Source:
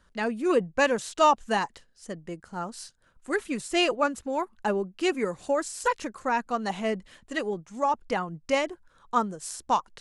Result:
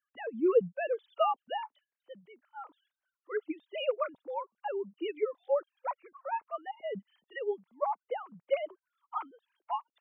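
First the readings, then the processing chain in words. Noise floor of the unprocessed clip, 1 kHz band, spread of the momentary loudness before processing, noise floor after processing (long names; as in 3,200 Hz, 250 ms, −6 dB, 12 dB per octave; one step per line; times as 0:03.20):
−64 dBFS, −8.5 dB, 14 LU, below −85 dBFS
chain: three sine waves on the formant tracks
noise reduction from a noise print of the clip's start 10 dB
dynamic equaliser 1,900 Hz, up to −7 dB, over −43 dBFS, Q 1.1
level −5.5 dB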